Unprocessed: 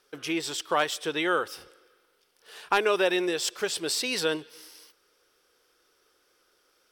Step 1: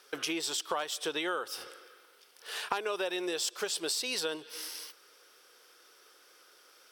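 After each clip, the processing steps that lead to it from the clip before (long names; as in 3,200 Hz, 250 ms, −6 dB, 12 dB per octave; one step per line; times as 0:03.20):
high-pass filter 580 Hz 6 dB per octave
dynamic equaliser 2,000 Hz, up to −6 dB, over −45 dBFS, Q 1.4
downward compressor 5 to 1, threshold −40 dBFS, peak gain reduction 16.5 dB
level +8.5 dB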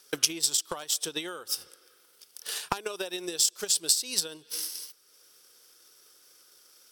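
bass and treble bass +15 dB, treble +14 dB
transient designer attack +11 dB, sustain −5 dB
level −7 dB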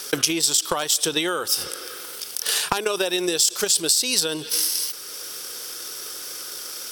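in parallel at +0.5 dB: brickwall limiter −17 dBFS, peak gain reduction 10 dB
on the sum: envelope flattener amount 50%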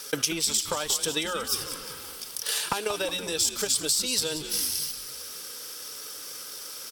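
notch comb filter 360 Hz
on a send: echo with shifted repeats 183 ms, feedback 56%, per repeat −110 Hz, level −11.5 dB
on the sum: level −4.5 dB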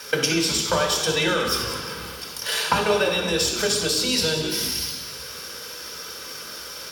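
convolution reverb RT60 1.1 s, pre-delay 3 ms, DRR 1.5 dB
level −3 dB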